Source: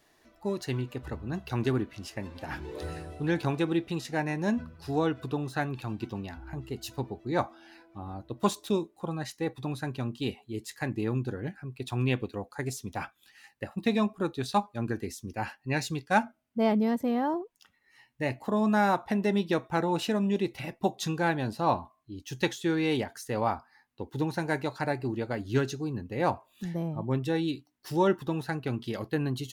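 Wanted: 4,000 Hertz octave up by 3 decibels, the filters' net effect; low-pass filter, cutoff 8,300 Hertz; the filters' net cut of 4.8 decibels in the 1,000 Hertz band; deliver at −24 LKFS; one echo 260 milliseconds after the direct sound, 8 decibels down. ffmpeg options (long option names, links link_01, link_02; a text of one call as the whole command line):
ffmpeg -i in.wav -af "lowpass=8300,equalizer=frequency=1000:width_type=o:gain=-6.5,equalizer=frequency=4000:width_type=o:gain=4,aecho=1:1:260:0.398,volume=7.5dB" out.wav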